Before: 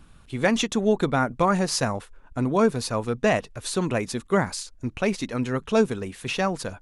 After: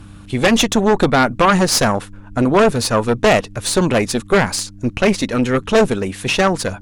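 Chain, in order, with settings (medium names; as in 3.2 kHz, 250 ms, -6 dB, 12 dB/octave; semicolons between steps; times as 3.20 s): mains buzz 100 Hz, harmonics 3, -51 dBFS -4 dB/octave; Chebyshev shaper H 5 -6 dB, 6 -8 dB, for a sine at -6.5 dBFS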